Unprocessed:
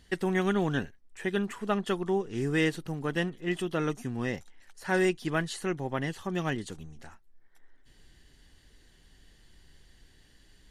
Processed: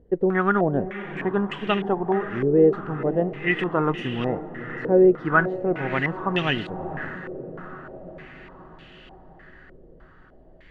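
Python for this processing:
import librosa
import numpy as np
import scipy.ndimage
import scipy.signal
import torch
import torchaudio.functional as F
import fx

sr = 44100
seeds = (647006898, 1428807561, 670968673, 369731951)

y = fx.rider(x, sr, range_db=10, speed_s=2.0)
y = fx.echo_diffused(y, sr, ms=508, feedback_pct=66, wet_db=-11.5)
y = fx.filter_held_lowpass(y, sr, hz=3.3, low_hz=490.0, high_hz=2900.0)
y = y * 10.0 ** (3.5 / 20.0)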